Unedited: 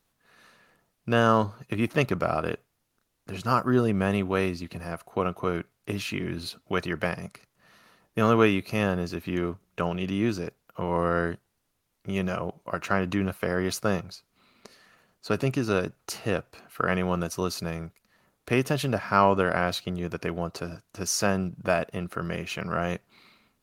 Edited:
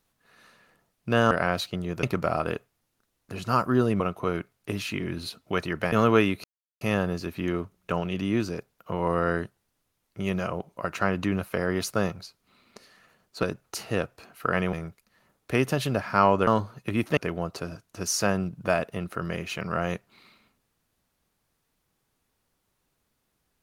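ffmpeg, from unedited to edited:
-filter_complex "[0:a]asplit=10[a][b][c][d][e][f][g][h][i][j];[a]atrim=end=1.312[k];[b]atrim=start=19.448:end=20.172[l];[c]atrim=start=2.008:end=3.982[m];[d]atrim=start=5.198:end=7.122[n];[e]atrim=start=8.178:end=8.7,asetpts=PTS-STARTPTS,afade=t=out:st=0.518:d=0.004:c=hsin,apad=pad_dur=0.37[o];[f]atrim=start=8.7:end=15.322,asetpts=PTS-STARTPTS,afade=t=in:d=0.004:c=hsin[p];[g]atrim=start=15.778:end=17.082[q];[h]atrim=start=17.708:end=19.452[r];[i]atrim=start=1.308:end=2.012[s];[j]atrim=start=20.168[t];[k][l]acrossfade=d=0.004:c1=hsin:c2=hsin[u];[u][m]acrossfade=d=0.004:c1=hsin:c2=hsin[v];[v][n]acrossfade=d=0.004:c1=hsin:c2=hsin[w];[o][p]concat=n=2:v=0:a=1[x];[w][x]acrossfade=d=0.004:c1=hsin:c2=hsin[y];[y][q]acrossfade=d=0.004:c1=hsin:c2=hsin[z];[z][r]acrossfade=d=0.004:c1=hsin:c2=hsin[aa];[aa][s]acrossfade=d=0.004:c1=hsin:c2=hsin[ab];[ab][t]acrossfade=d=0.004:c1=hsin:c2=hsin"

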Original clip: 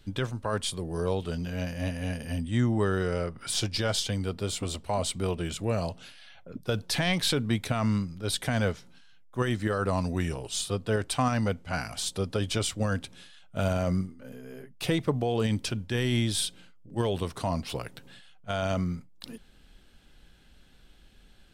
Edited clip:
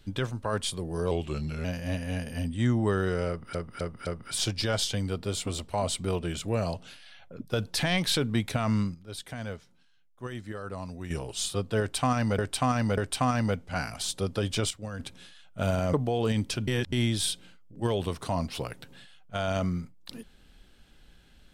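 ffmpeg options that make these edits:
-filter_complex "[0:a]asplit=15[a][b][c][d][e][f][g][h][i][j][k][l][m][n][o];[a]atrim=end=1.114[p];[b]atrim=start=1.11:end=1.58,asetpts=PTS-STARTPTS,asetrate=38808,aresample=44100,atrim=end_sample=23553,asetpts=PTS-STARTPTS[q];[c]atrim=start=1.576:end=3.482[r];[d]atrim=start=3.218:end=3.482[s];[e]atrim=start=3.218:end=3.482[t];[f]atrim=start=3.218:end=8.102[u];[g]atrim=start=8.098:end=10.262,asetpts=PTS-STARTPTS,volume=-10dB[v];[h]atrim=start=10.258:end=11.542[w];[i]atrim=start=10.948:end=11.542[x];[j]atrim=start=10.948:end=12.682[y];[k]atrim=start=12.678:end=12.972,asetpts=PTS-STARTPTS,volume=-9.5dB[z];[l]atrim=start=12.968:end=13.912[aa];[m]atrim=start=15.078:end=15.822[ab];[n]atrim=start=15.818:end=16.072,asetpts=PTS-STARTPTS,areverse[ac];[o]atrim=start=16.068[ad];[p][q]acrossfade=d=0.004:c1=hsin:c2=hsin[ae];[ae][r]acrossfade=d=0.004:c1=hsin:c2=hsin[af];[af][s]acrossfade=d=0.004:c1=hsin:c2=hsin[ag];[ag][t]acrossfade=d=0.004:c1=hsin:c2=hsin[ah];[ah][u]acrossfade=d=0.004:c1=hsin:c2=hsin[ai];[ai][v]acrossfade=d=0.004:c1=hsin:c2=hsin[aj];[aj][w]acrossfade=d=0.004:c1=hsin:c2=hsin[ak];[ak][x]acrossfade=d=0.004:c1=hsin:c2=hsin[al];[al][y]acrossfade=d=0.004:c1=hsin:c2=hsin[am];[am][z]acrossfade=d=0.004:c1=hsin:c2=hsin[an];[an][aa]acrossfade=d=0.004:c1=hsin:c2=hsin[ao];[ao][ab]acrossfade=d=0.004:c1=hsin:c2=hsin[ap];[ap][ac]acrossfade=d=0.004:c1=hsin:c2=hsin[aq];[aq][ad]acrossfade=d=0.004:c1=hsin:c2=hsin"

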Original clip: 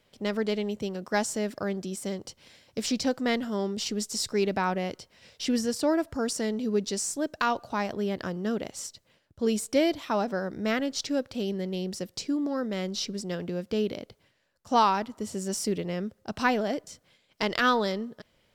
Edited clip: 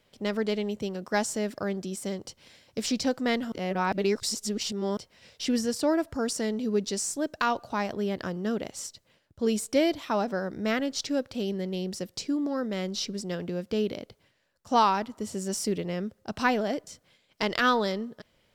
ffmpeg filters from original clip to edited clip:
-filter_complex "[0:a]asplit=3[a][b][c];[a]atrim=end=3.522[d];[b]atrim=start=3.518:end=4.972,asetpts=PTS-STARTPTS,areverse[e];[c]atrim=start=4.968[f];[d][e]acrossfade=d=0.004:c1=hsin:c2=hsin[g];[g][f]acrossfade=d=0.004:c1=hsin:c2=hsin"

